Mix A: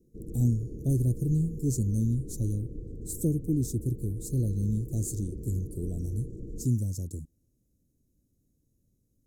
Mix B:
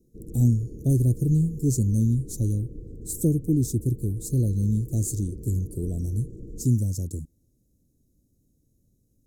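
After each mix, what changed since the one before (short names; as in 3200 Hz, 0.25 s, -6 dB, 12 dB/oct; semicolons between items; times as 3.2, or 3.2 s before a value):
speech +5.0 dB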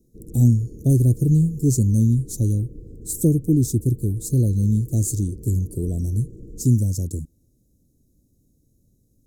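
speech +4.5 dB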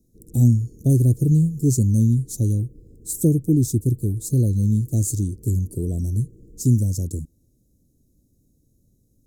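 background -8.0 dB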